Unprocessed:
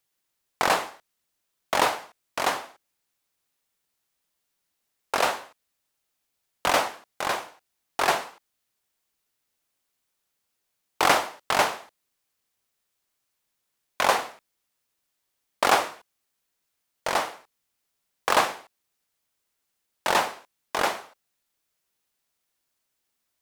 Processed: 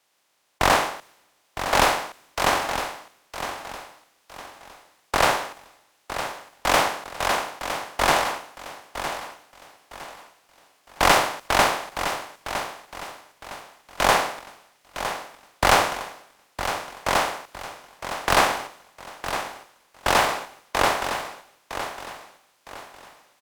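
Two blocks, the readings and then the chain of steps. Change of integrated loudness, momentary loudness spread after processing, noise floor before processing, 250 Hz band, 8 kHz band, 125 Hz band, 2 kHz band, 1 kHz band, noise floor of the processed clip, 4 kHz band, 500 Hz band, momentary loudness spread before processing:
+1.5 dB, 21 LU, −79 dBFS, +5.5 dB, +5.0 dB, +11.0 dB, +4.5 dB, +4.0 dB, −65 dBFS, +4.5 dB, +4.0 dB, 15 LU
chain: compressor on every frequency bin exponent 0.4
tube saturation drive 7 dB, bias 0.75
on a send: repeating echo 960 ms, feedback 56%, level −5 dB
on the sum: multiband upward and downward expander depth 100%
level −2.5 dB

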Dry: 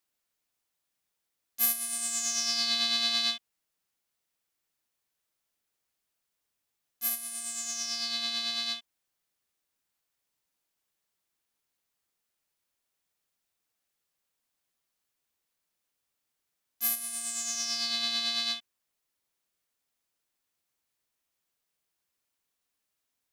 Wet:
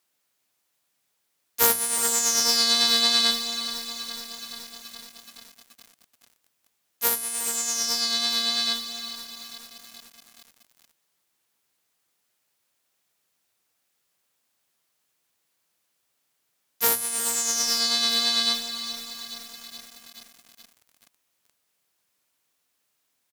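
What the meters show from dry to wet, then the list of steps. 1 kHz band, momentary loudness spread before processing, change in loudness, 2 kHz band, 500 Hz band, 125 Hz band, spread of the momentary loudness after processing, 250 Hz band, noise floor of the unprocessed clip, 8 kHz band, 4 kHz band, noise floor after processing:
+11.5 dB, 8 LU, +7.0 dB, +7.0 dB, +15.5 dB, can't be measured, 21 LU, +10.0 dB, −83 dBFS, +8.5 dB, +7.5 dB, −75 dBFS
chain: stylus tracing distortion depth 0.046 ms
high-pass filter 91 Hz 12 dB per octave
mains-hum notches 60/120/180/240/300/360/420 Hz
dynamic equaliser 2,600 Hz, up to −6 dB, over −47 dBFS, Q 2.3
pitch vibrato 3.3 Hz 9.7 cents
repeating echo 357 ms, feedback 34%, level −13.5 dB
feedback echo at a low word length 425 ms, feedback 80%, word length 7 bits, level −12.5 dB
level +8.5 dB

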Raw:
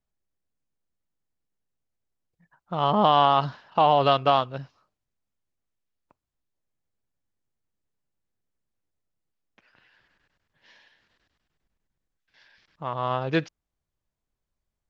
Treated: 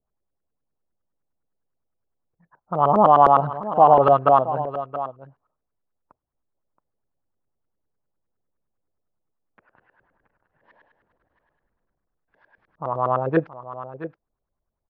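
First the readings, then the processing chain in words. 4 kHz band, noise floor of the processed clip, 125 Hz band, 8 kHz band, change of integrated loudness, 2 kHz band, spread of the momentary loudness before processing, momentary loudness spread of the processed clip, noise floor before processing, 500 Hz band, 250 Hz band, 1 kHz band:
below −15 dB, −81 dBFS, +2.0 dB, can't be measured, +4.5 dB, −1.0 dB, 16 LU, 22 LU, −85 dBFS, +6.0 dB, +3.0 dB, +5.5 dB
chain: auto-filter low-pass saw up 9.8 Hz 440–1,500 Hz
on a send: single-tap delay 674 ms −13 dB
on the sum: level +1.5 dB

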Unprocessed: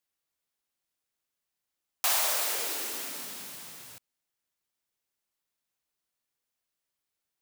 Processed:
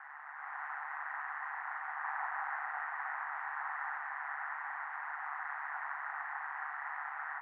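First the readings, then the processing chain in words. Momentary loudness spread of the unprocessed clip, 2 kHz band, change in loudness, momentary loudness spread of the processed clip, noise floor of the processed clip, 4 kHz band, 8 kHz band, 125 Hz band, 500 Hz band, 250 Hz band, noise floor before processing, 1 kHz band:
19 LU, +5.5 dB, −11.5 dB, 3 LU, −47 dBFS, below −30 dB, below −40 dB, can't be measured, −12.0 dB, below −40 dB, below −85 dBFS, +6.0 dB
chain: sign of each sample alone
automatic gain control gain up to 11.5 dB
ring modulation 73 Hz
soft clipping −27.5 dBFS, distortion −21 dB
Chebyshev band-pass filter 760–1,900 Hz, order 4
level +4.5 dB

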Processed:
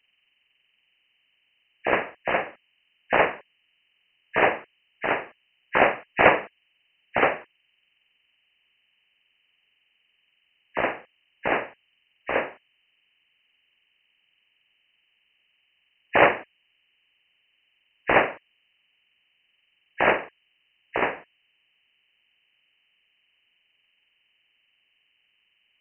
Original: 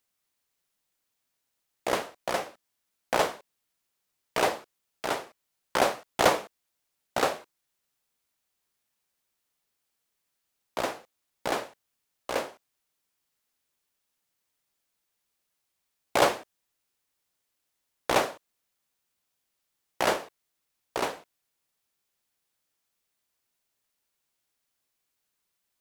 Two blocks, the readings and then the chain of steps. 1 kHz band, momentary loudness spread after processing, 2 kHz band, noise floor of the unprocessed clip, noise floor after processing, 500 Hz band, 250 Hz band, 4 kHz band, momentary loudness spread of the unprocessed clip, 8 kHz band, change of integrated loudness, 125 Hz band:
+4.5 dB, 17 LU, +9.5 dB, −81 dBFS, −71 dBFS, +4.5 dB, +4.5 dB, −3.0 dB, 16 LU, below −40 dB, +5.0 dB, +4.5 dB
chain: hearing-aid frequency compression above 1,600 Hz 4 to 1
level +4.5 dB

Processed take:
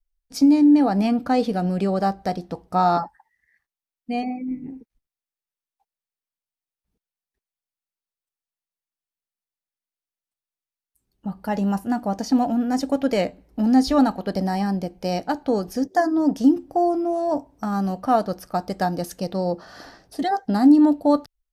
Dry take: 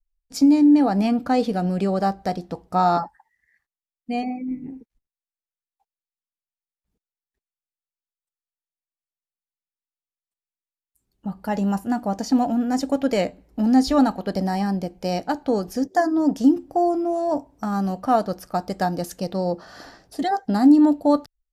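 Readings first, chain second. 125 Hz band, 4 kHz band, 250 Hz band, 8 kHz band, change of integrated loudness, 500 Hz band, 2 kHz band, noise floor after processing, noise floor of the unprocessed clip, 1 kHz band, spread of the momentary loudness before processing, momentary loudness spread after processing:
0.0 dB, 0.0 dB, 0.0 dB, −1.0 dB, 0.0 dB, 0.0 dB, 0.0 dB, below −85 dBFS, below −85 dBFS, 0.0 dB, 13 LU, 13 LU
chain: notch filter 7,200 Hz, Q 12

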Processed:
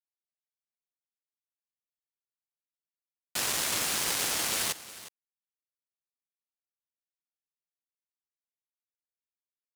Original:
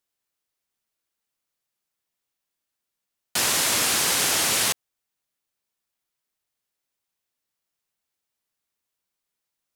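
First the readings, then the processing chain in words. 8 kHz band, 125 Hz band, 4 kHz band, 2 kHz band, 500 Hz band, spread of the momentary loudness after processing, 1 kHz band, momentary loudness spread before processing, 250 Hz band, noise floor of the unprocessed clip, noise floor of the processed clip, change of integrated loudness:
−8.0 dB, −7.5 dB, −8.0 dB, −8.0 dB, −8.0 dB, 12 LU, −8.0 dB, 6 LU, −8.0 dB, −84 dBFS, below −85 dBFS, −8.0 dB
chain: power curve on the samples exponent 2
single-tap delay 361 ms −16 dB

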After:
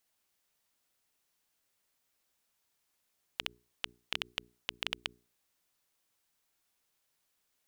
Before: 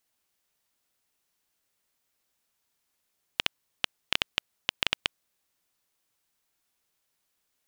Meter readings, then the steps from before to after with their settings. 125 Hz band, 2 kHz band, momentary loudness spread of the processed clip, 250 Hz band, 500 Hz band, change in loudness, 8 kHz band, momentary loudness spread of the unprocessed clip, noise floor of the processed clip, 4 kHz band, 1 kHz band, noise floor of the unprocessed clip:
−8.0 dB, −8.5 dB, 6 LU, −8.0 dB, −8.5 dB, −8.5 dB, −8.5 dB, 6 LU, −79 dBFS, −8.5 dB, −8.5 dB, −78 dBFS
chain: mains-hum notches 60/120/180/240/300/360/420 Hz
brickwall limiter −11.5 dBFS, peak gain reduction 7.5 dB
level −1 dB

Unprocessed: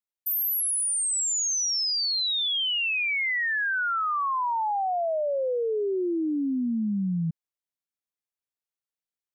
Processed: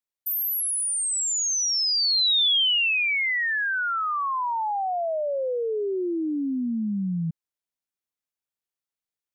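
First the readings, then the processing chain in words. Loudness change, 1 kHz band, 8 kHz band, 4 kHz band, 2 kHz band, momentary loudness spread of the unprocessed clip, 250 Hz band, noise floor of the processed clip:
+2.0 dB, 0.0 dB, +1.0 dB, +5.0 dB, +2.0 dB, 4 LU, 0.0 dB, below −85 dBFS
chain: dynamic equaliser 3,500 Hz, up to +6 dB, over −39 dBFS, Q 1.3

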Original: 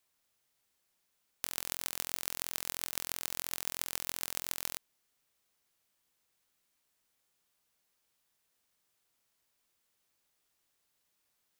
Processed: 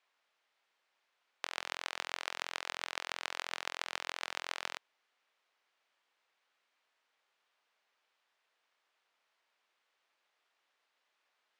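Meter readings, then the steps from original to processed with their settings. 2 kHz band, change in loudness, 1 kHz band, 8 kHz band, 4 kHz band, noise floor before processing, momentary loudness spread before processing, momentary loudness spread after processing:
+6.0 dB, −3.5 dB, +6.5 dB, −11.0 dB, +1.0 dB, −79 dBFS, 2 LU, 2 LU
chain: band-pass filter 590–2,900 Hz
level +7 dB

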